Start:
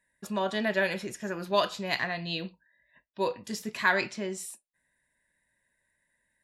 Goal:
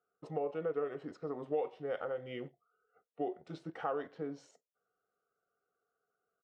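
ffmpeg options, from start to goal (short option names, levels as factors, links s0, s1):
-filter_complex "[0:a]asplit=2[s0][s1];[s1]aeval=exprs='val(0)*gte(abs(val(0)),0.0106)':c=same,volume=0.282[s2];[s0][s2]amix=inputs=2:normalize=0,asetrate=33038,aresample=44100,atempo=1.33484,bandpass=f=510:t=q:w=2.4:csg=0,acompressor=threshold=0.01:ratio=2.5,volume=1.5"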